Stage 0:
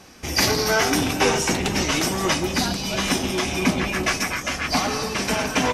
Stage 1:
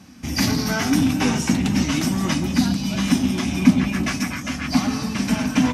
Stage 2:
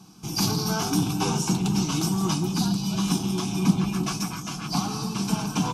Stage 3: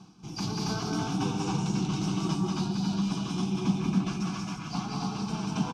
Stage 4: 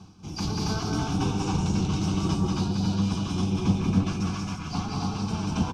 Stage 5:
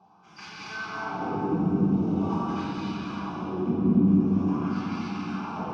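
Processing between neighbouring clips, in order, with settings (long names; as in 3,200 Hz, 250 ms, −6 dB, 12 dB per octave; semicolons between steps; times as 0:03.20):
high-pass filter 64 Hz; low shelf with overshoot 320 Hz +7.5 dB, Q 3; level −4 dB
phaser with its sweep stopped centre 380 Hz, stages 8
high-frequency loss of the air 100 metres; loudspeakers that aren't time-aligned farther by 65 metres −2 dB, 95 metres −2 dB; reversed playback; upward compression, threshold −30 dBFS; reversed playback; level −7.5 dB
sub-octave generator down 1 octave, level −3 dB; level +2 dB
LFO wah 0.45 Hz 250–2,100 Hz, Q 2.7; rectangular room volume 220 cubic metres, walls hard, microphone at 1.2 metres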